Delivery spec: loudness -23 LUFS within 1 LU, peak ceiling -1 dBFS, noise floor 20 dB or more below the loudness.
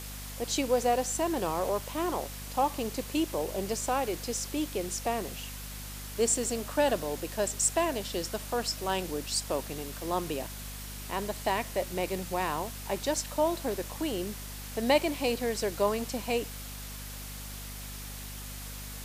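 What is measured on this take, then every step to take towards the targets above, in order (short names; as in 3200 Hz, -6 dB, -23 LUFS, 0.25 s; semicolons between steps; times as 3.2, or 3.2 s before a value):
hum 50 Hz; harmonics up to 250 Hz; hum level -41 dBFS; noise floor -41 dBFS; noise floor target -52 dBFS; loudness -31.5 LUFS; peak -11.5 dBFS; loudness target -23.0 LUFS
-> de-hum 50 Hz, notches 5; denoiser 11 dB, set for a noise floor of -41 dBFS; gain +8.5 dB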